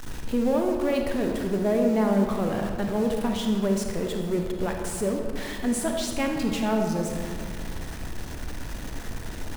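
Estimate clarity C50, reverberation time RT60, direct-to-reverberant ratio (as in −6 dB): 3.5 dB, 2.4 s, 2.5 dB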